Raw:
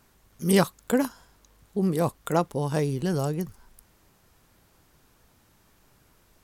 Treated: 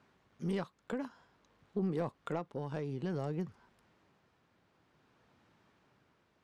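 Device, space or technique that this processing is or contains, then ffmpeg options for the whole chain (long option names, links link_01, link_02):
AM radio: -af "highpass=120,lowpass=3300,acompressor=threshold=-25dB:ratio=5,asoftclip=type=tanh:threshold=-18.5dB,tremolo=f=0.55:d=0.36,volume=-4dB"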